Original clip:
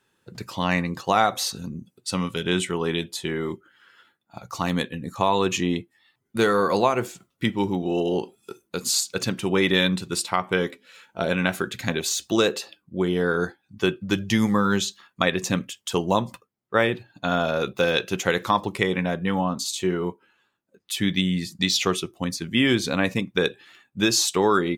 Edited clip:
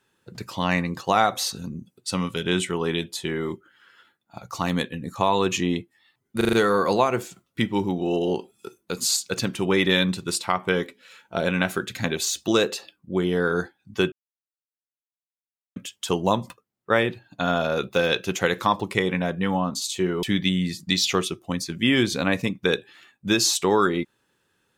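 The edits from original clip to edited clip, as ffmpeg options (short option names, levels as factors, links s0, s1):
-filter_complex "[0:a]asplit=8[s0][s1][s2][s3][s4][s5][s6][s7];[s0]atrim=end=6.412[s8];[s1]atrim=start=6.368:end=6.412[s9];[s2]atrim=start=6.368:end=6.412[s10];[s3]atrim=start=6.368:end=6.412[s11];[s4]atrim=start=6.368:end=13.96,asetpts=PTS-STARTPTS,afade=t=out:st=7.588:d=0.004:c=hsin[s12];[s5]atrim=start=13.96:end=15.6,asetpts=PTS-STARTPTS,volume=0[s13];[s6]atrim=start=15.6:end=20.072,asetpts=PTS-STARTPTS,afade=t=in:d=0.004:c=hsin[s14];[s7]atrim=start=20.948[s15];[s8][s9]acrossfade=d=0.004:c1=hsin:c2=hsin[s16];[s16][s10]acrossfade=d=0.004:c1=hsin:c2=hsin[s17];[s17][s11]acrossfade=d=0.004:c1=hsin:c2=hsin[s18];[s12][s13][s14]concat=n=3:v=0:a=1[s19];[s18][s19]acrossfade=d=0.004:c1=hsin:c2=hsin[s20];[s20][s15]acrossfade=d=0.004:c1=hsin:c2=hsin"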